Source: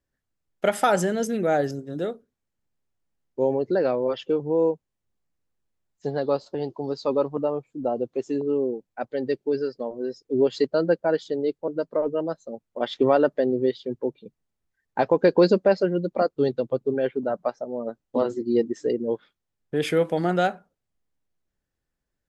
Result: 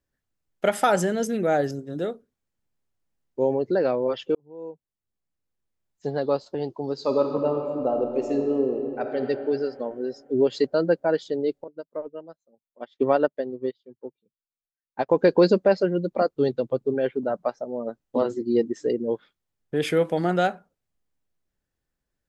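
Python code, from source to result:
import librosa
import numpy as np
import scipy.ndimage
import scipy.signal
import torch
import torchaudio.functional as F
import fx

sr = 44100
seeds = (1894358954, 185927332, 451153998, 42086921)

y = fx.reverb_throw(x, sr, start_s=6.93, length_s=2.25, rt60_s=2.8, drr_db=3.0)
y = fx.upward_expand(y, sr, threshold_db=-34.0, expansion=2.5, at=(11.64, 15.09))
y = fx.edit(y, sr, fx.fade_in_span(start_s=4.35, length_s=1.81), tone=tone)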